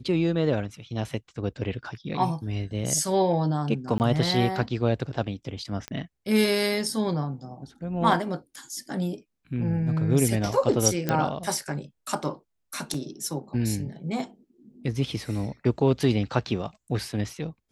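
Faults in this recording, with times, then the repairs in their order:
3.98–4.00 s: dropout 19 ms
5.88 s: pop -18 dBFS
11.09 s: pop -11 dBFS
12.94 s: dropout 3.1 ms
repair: de-click; interpolate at 3.98 s, 19 ms; interpolate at 12.94 s, 3.1 ms

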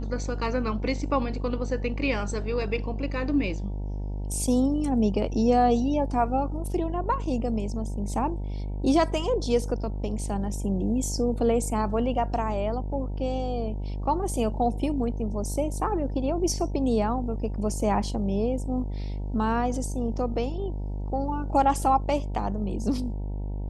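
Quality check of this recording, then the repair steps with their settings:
buzz 50 Hz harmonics 19 -31 dBFS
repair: de-hum 50 Hz, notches 19

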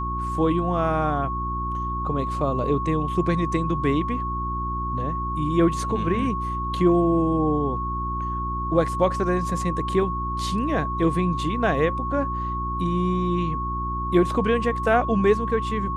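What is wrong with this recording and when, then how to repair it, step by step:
hum 60 Hz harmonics 6 -30 dBFS
whine 1.1 kHz -27 dBFS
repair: de-hum 60 Hz, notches 6; band-stop 1.1 kHz, Q 30

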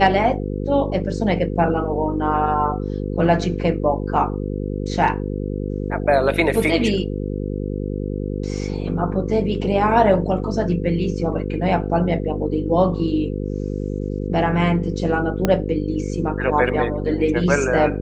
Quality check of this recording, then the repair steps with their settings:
buzz 50 Hz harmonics 10 -25 dBFS
15.45 s: pop -5 dBFS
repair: de-click; de-hum 50 Hz, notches 10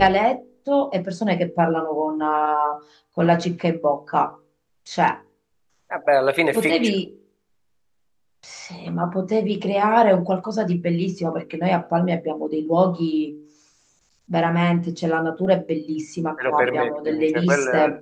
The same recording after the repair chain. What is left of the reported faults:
15.45 s: pop

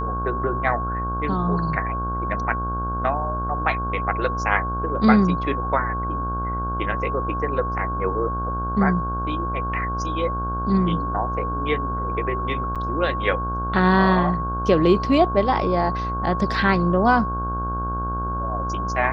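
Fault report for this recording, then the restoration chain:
buzz 60 Hz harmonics 27 -28 dBFS
whine 1.1 kHz -26 dBFS
12.75–12.76 s: dropout 6.7 ms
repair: de-hum 60 Hz, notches 27; band-stop 1.1 kHz, Q 30; interpolate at 12.75 s, 6.7 ms

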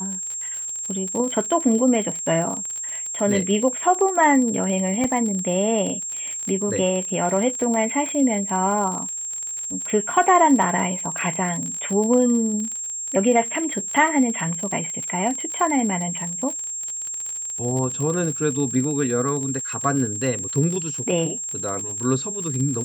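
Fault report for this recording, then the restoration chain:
crackle 39 per s -26 dBFS
whine 7.5 kHz -27 dBFS
5.04 s: dropout 3.4 ms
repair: de-click; band-stop 7.5 kHz, Q 30; interpolate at 5.04 s, 3.4 ms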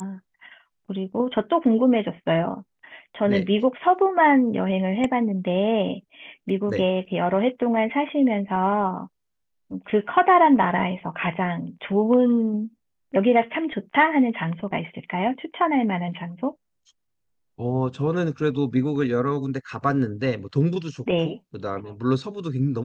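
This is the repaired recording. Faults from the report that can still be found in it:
nothing left

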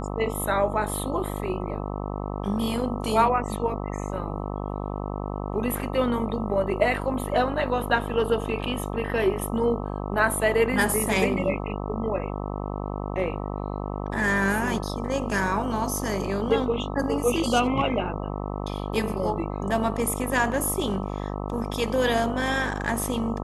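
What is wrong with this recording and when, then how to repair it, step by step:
buzz 50 Hz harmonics 26 -31 dBFS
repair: de-hum 50 Hz, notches 26

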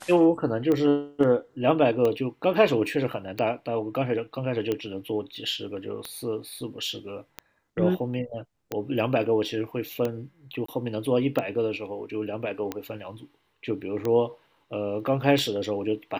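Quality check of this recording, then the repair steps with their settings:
tick 45 rpm -15 dBFS
10.66–10.68 s: dropout 24 ms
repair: de-click; interpolate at 10.66 s, 24 ms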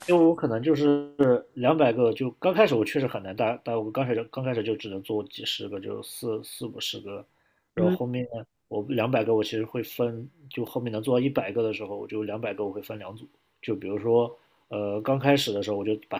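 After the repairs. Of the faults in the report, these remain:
nothing left

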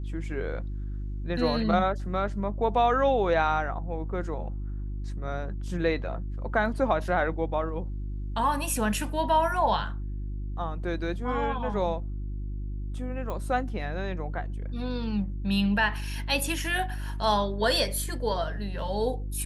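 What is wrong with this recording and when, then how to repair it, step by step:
hum 50 Hz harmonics 7 -33 dBFS
13.30 s: pop -22 dBFS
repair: de-click; de-hum 50 Hz, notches 7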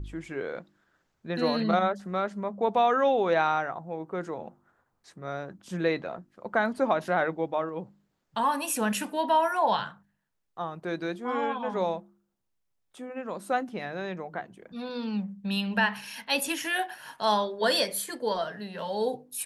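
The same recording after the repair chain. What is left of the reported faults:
nothing left

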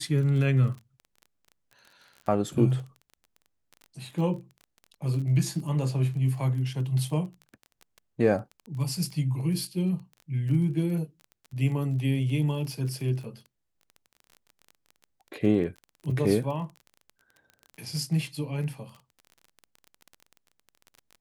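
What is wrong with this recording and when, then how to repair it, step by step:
crackle 23 per s -36 dBFS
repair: de-click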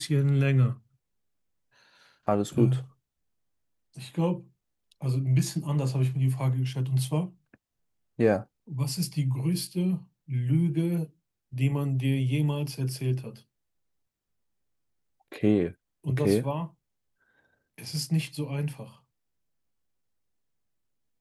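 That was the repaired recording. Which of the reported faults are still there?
nothing left

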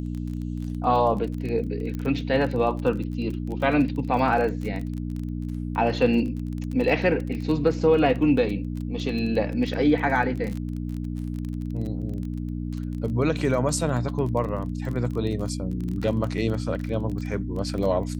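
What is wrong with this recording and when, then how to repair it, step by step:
crackle 25 per s -30 dBFS
hum 60 Hz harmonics 5 -30 dBFS
1.95 s: pop -20 dBFS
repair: de-click; de-hum 60 Hz, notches 5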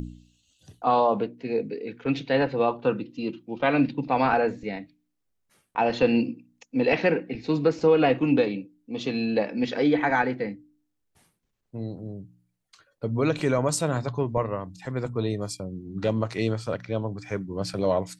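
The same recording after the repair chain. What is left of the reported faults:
nothing left

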